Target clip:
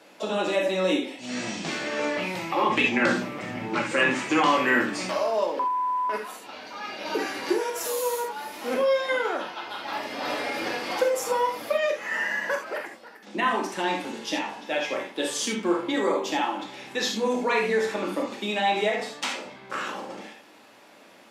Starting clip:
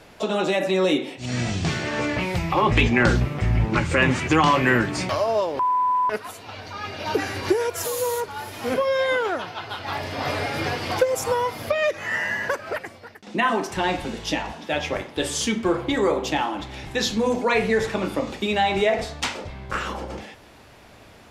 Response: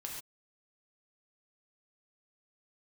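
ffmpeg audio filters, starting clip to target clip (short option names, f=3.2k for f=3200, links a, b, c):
-filter_complex "[0:a]highpass=f=210:w=0.5412,highpass=f=210:w=1.3066[a];[1:a]atrim=start_sample=2205,atrim=end_sample=3969[b];[a][b]afir=irnorm=-1:irlink=0"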